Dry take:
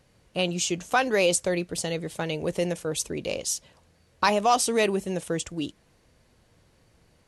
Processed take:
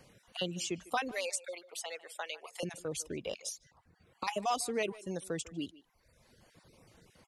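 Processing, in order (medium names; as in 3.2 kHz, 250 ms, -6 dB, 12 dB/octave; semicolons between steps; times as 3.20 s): random holes in the spectrogram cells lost 21%; reverb removal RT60 0.87 s; 1.11–2.63 s: high-pass 640 Hz 24 dB/octave; 3.49–4.28 s: compression 3:1, threshold -33 dBFS, peak gain reduction 11.5 dB; speakerphone echo 150 ms, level -19 dB; three bands compressed up and down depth 40%; trim -8 dB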